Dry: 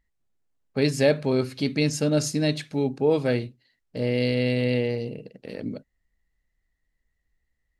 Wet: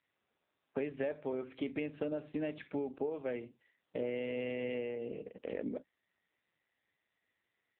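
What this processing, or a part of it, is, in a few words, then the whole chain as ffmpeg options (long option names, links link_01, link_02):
voicemail: -af "highpass=320,lowpass=2700,acompressor=threshold=-34dB:ratio=12,volume=1.5dB" -ar 8000 -c:a libopencore_amrnb -b:a 6700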